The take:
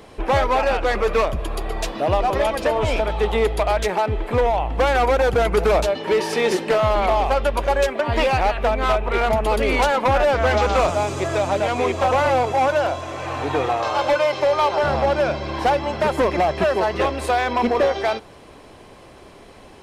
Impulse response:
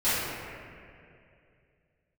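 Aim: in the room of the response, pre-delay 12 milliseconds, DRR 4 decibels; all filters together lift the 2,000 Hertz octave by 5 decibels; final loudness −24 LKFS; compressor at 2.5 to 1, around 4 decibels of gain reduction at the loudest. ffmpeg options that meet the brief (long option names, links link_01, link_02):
-filter_complex "[0:a]equalizer=frequency=2000:width_type=o:gain=6.5,acompressor=threshold=-19dB:ratio=2.5,asplit=2[link_01][link_02];[1:a]atrim=start_sample=2205,adelay=12[link_03];[link_02][link_03]afir=irnorm=-1:irlink=0,volume=-18.5dB[link_04];[link_01][link_04]amix=inputs=2:normalize=0,volume=-3.5dB"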